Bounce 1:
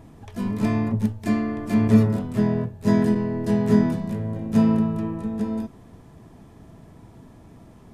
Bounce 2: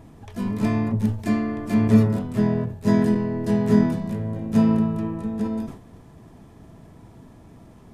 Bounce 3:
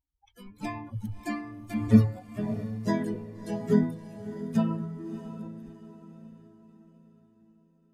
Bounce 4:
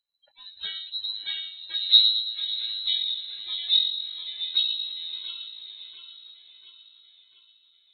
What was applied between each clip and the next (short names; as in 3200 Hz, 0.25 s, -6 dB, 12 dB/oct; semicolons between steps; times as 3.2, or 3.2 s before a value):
sustainer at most 110 dB/s
per-bin expansion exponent 3; on a send: diffused feedback echo 0.641 s, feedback 44%, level -12 dB
split-band echo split 380 Hz, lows 0.11 s, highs 0.693 s, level -8.5 dB; treble ducked by the level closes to 1400 Hz, closed at -24.5 dBFS; inverted band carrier 4000 Hz